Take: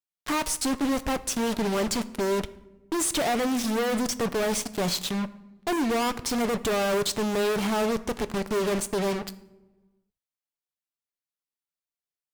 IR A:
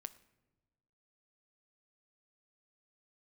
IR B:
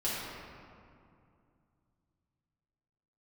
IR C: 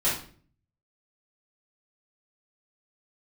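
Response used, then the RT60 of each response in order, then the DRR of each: A; not exponential, 2.4 s, 0.45 s; 12.0, -9.5, -9.5 dB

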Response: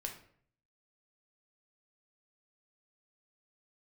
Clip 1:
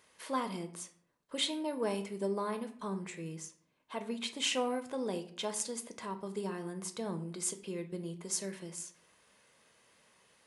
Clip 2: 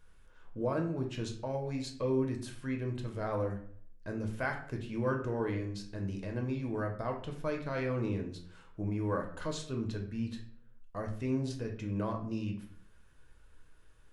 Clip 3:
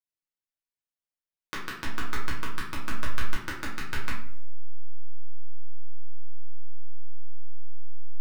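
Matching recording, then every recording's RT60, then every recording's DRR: 2; 0.60, 0.60, 0.60 s; 7.5, 2.0, -6.0 dB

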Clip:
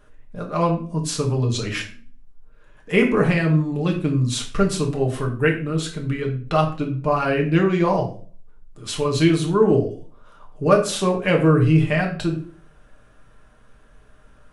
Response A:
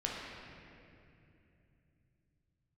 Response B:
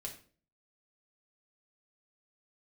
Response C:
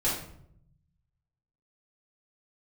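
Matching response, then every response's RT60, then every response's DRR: B; 2.7, 0.45, 0.70 s; -4.0, 0.0, -8.5 dB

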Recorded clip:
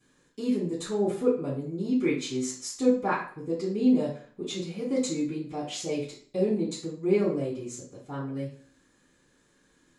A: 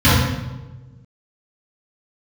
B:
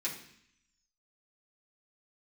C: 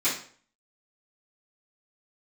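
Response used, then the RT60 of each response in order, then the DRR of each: C; 1.2, 0.65, 0.50 s; -14.0, -6.5, -14.5 dB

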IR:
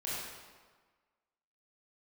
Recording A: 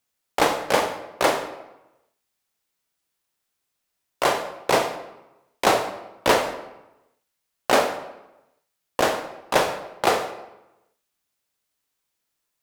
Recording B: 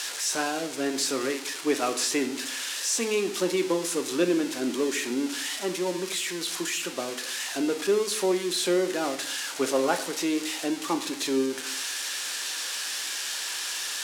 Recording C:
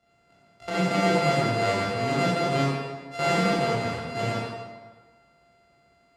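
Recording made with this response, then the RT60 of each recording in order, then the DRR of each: C; 0.95, 0.70, 1.5 s; 7.5, 6.0, -8.5 dB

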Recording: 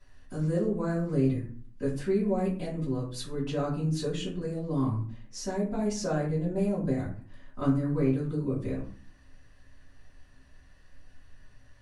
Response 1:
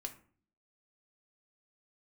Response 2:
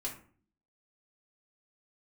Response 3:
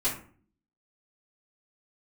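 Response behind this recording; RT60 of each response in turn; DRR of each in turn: 3; 0.45, 0.45, 0.45 s; 4.0, -3.5, -11.5 dB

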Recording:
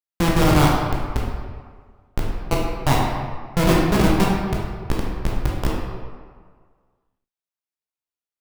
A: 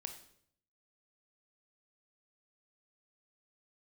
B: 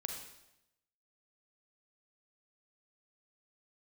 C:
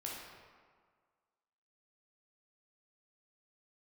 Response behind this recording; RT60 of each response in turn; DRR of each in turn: C; 0.65, 0.90, 1.7 s; 6.0, 3.0, -4.0 dB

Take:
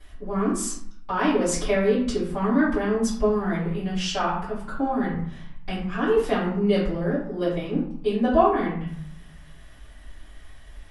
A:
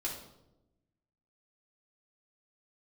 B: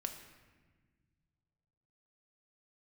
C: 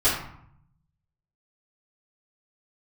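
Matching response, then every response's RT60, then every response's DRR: C; 0.90, 1.4, 0.65 s; -5.0, 5.0, -12.5 dB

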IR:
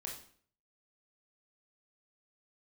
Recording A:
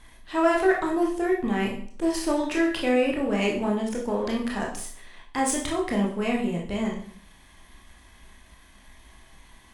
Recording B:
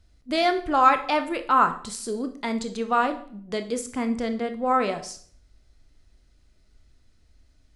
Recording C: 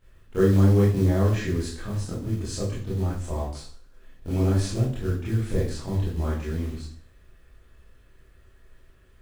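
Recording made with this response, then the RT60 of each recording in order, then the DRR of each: A; 0.50, 0.50, 0.50 s; -2.0, 7.5, -10.0 dB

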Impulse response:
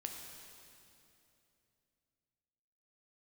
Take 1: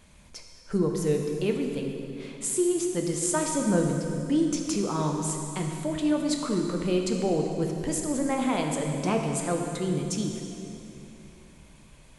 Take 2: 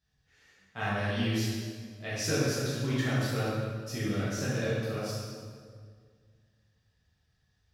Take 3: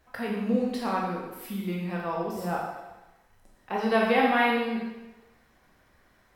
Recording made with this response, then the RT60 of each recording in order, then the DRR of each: 1; 2.8, 1.9, 1.1 s; 2.0, -10.0, -3.0 dB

